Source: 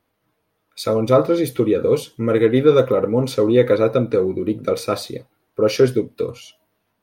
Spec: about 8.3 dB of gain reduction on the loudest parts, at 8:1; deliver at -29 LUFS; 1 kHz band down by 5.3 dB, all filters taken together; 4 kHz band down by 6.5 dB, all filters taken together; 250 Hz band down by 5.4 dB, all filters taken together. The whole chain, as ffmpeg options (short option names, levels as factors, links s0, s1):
-af "equalizer=f=250:t=o:g=-7,equalizer=f=1000:t=o:g=-7,equalizer=f=4000:t=o:g=-7.5,acompressor=threshold=0.1:ratio=8,volume=0.75"